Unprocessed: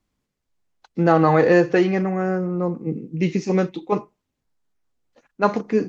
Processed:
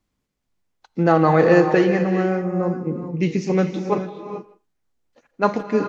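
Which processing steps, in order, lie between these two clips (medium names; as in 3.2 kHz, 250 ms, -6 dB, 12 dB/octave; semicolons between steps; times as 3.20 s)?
speakerphone echo 160 ms, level -20 dB; gated-style reverb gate 460 ms rising, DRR 7.5 dB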